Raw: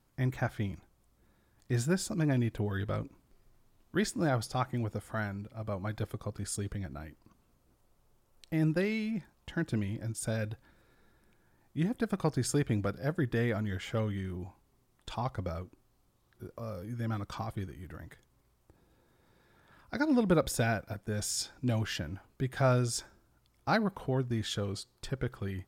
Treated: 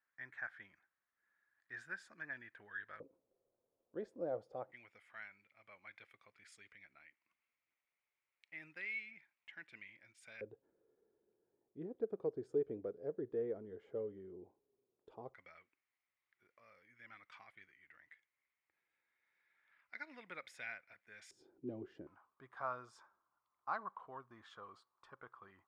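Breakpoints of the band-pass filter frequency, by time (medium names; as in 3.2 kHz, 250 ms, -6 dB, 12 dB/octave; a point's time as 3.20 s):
band-pass filter, Q 6.1
1.7 kHz
from 3.00 s 510 Hz
from 4.72 s 2.2 kHz
from 10.41 s 430 Hz
from 15.34 s 2.1 kHz
from 21.31 s 370 Hz
from 22.07 s 1.1 kHz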